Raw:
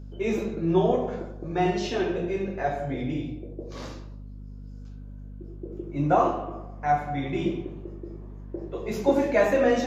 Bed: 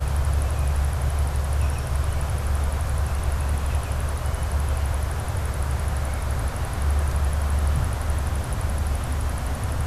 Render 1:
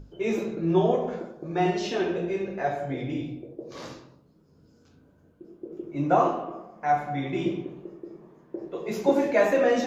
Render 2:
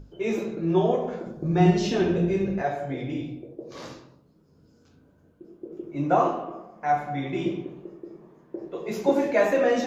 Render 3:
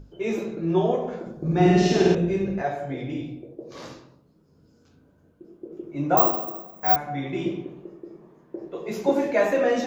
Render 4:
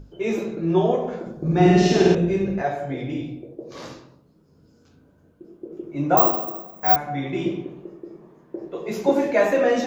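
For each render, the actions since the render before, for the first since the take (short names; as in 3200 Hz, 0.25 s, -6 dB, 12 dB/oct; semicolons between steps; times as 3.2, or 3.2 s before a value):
notches 50/100/150/200/250 Hz
1.26–2.62 tone controls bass +15 dB, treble +4 dB
1.41–2.15 flutter echo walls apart 8.6 m, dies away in 1.3 s; 6.17–6.96 careless resampling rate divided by 2×, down filtered, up zero stuff
gain +2.5 dB; limiter -2 dBFS, peak gain reduction 1 dB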